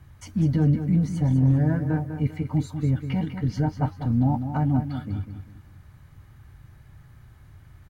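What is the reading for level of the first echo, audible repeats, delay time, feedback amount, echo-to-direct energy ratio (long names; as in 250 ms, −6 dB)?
−9.0 dB, 3, 198 ms, 34%, −8.5 dB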